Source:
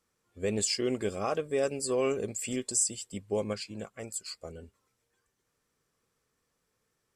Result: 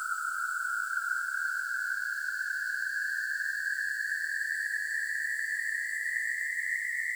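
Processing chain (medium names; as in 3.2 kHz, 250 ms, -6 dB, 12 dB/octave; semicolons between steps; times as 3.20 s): block-companded coder 3-bit; tone controls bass +4 dB, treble +8 dB; compression, threshold -32 dBFS, peak gain reduction 15.5 dB; feedback echo behind a high-pass 214 ms, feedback 74%, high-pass 4.3 kHz, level -9 dB; painted sound rise, 4.71–5.47 s, 1.2–3.5 kHz -35 dBFS; Paulstretch 31×, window 0.25 s, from 4.82 s; trim +2 dB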